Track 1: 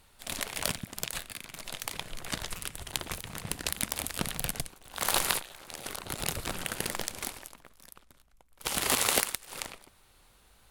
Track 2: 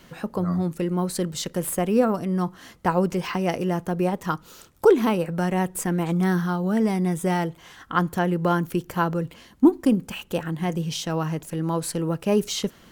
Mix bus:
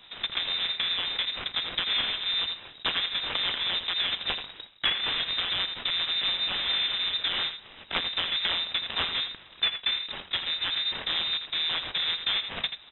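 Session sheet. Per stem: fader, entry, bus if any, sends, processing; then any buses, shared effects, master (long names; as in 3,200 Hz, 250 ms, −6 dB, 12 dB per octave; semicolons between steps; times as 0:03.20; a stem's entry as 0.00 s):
−9.5 dB, 0.00 s, no send, no echo send, no processing
−0.5 dB, 0.00 s, no send, echo send −11 dB, mains-hum notches 60/120/180 Hz; short delay modulated by noise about 1,400 Hz, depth 0.22 ms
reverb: not used
echo: single-tap delay 81 ms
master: voice inversion scrambler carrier 3,800 Hz; downward compressor 5 to 1, threshold −25 dBFS, peak gain reduction 13.5 dB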